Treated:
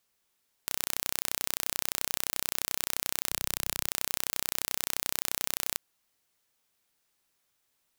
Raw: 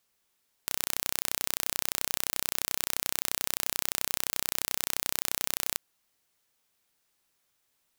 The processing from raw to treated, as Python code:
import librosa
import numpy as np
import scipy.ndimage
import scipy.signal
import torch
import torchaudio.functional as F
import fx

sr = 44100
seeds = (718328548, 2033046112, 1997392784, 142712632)

y = fx.low_shelf(x, sr, hz=160.0, db=9.0, at=(3.29, 3.88))
y = y * 10.0 ** (-1.0 / 20.0)